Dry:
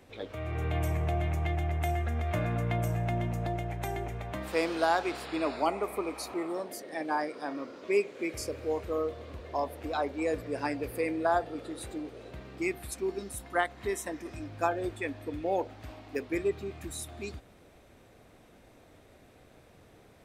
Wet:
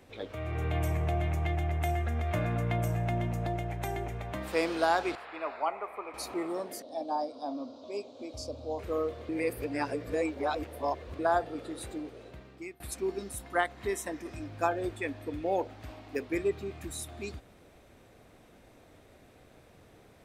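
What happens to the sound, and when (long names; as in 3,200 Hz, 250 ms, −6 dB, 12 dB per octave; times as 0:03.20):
0:05.15–0:06.14: three-way crossover with the lows and the highs turned down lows −18 dB, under 580 Hz, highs −21 dB, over 2,600 Hz
0:06.82–0:08.79: drawn EQ curve 110 Hz 0 dB, 180 Hz −18 dB, 250 Hz +6 dB, 370 Hz −14 dB, 650 Hz +4 dB, 1,100 Hz −6 dB, 1,900 Hz −27 dB, 3,800 Hz +2 dB, 5,900 Hz −3 dB, 12,000 Hz −17 dB
0:09.29–0:11.19: reverse
0:11.72–0:12.80: fade out equal-power, to −21 dB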